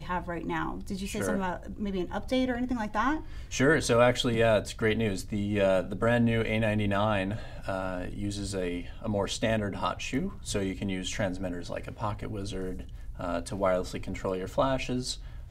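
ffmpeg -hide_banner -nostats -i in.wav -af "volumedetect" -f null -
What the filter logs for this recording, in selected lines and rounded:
mean_volume: -29.3 dB
max_volume: -8.2 dB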